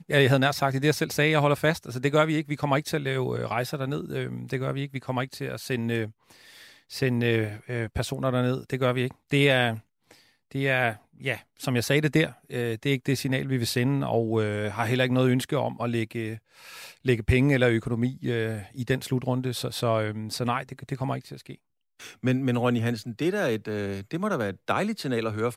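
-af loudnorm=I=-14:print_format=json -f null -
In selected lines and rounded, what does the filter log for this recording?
"input_i" : "-26.6",
"input_tp" : "-8.1",
"input_lra" : "4.3",
"input_thresh" : "-37.0",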